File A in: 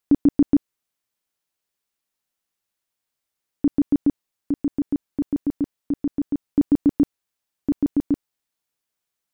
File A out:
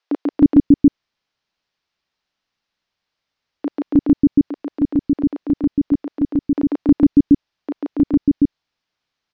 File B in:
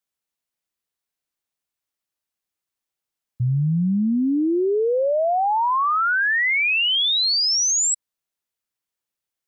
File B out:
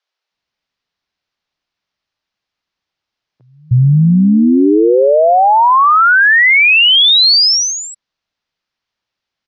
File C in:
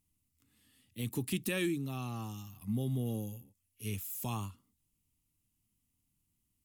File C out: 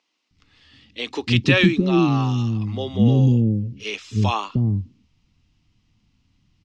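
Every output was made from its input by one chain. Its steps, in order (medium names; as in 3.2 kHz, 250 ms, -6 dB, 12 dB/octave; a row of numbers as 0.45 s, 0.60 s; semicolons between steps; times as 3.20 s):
steep low-pass 5.4 kHz 36 dB/octave; bands offset in time highs, lows 310 ms, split 390 Hz; peak normalisation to -3 dBFS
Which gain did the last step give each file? +8.5 dB, +11.5 dB, +19.0 dB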